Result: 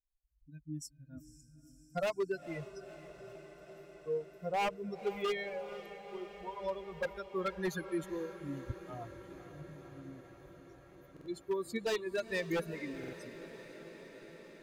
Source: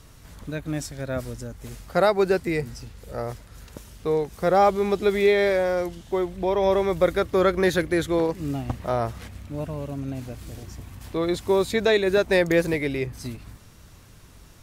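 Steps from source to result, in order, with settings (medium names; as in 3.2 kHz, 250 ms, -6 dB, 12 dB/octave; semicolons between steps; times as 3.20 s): expander on every frequency bin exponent 3; wavefolder -19.5 dBFS; on a send: echo that smears into a reverb 491 ms, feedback 78%, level -14 dB; on the sum: buffer glitch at 11.12/12.99 s, samples 2048, times 2; trim -7.5 dB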